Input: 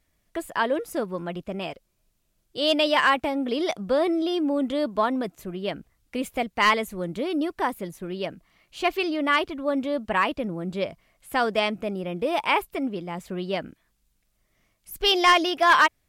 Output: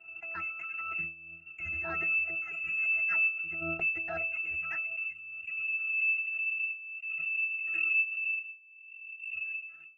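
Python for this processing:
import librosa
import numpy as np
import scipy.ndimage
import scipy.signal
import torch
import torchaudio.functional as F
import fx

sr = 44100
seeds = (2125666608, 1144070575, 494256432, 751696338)

y = fx.octave_divider(x, sr, octaves=2, level_db=-2.0)
y = fx.low_shelf(y, sr, hz=160.0, db=-9.0)
y = fx.filter_sweep_lowpass(y, sr, from_hz=2000.0, to_hz=190.0, start_s=7.31, end_s=9.26, q=0.95)
y = fx.tilt_eq(y, sr, slope=-2.0)
y = fx.freq_invert(y, sr, carrier_hz=2700)
y = fx.leveller(y, sr, passes=2)
y = fx.stretch_grains(y, sr, factor=0.62, grain_ms=83.0)
y = fx.level_steps(y, sr, step_db=12)
y = fx.octave_resonator(y, sr, note='E', decay_s=0.36)
y = fx.pre_swell(y, sr, db_per_s=29.0)
y = F.gain(torch.from_numpy(y), 7.5).numpy()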